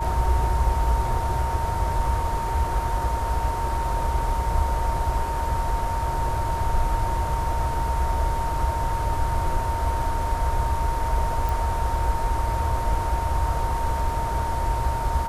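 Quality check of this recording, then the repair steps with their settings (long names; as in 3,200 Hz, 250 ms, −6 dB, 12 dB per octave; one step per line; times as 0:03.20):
whistle 920 Hz −27 dBFS
0:11.49: click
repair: click removal
notch filter 920 Hz, Q 30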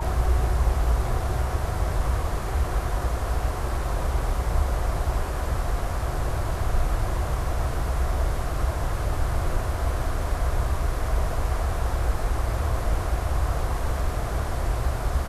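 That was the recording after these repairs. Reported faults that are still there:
none of them is left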